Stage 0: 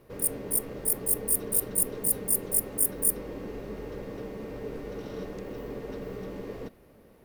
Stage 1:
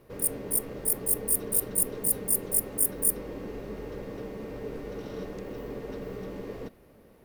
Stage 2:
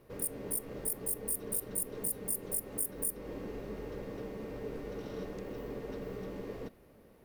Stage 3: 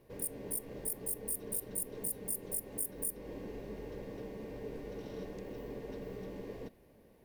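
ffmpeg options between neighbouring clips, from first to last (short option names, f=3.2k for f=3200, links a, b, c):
-af anull
-af "acompressor=threshold=-28dB:ratio=4,volume=-3.5dB"
-af "equalizer=f=1.3k:w=7.2:g=-13.5,volume=-2.5dB"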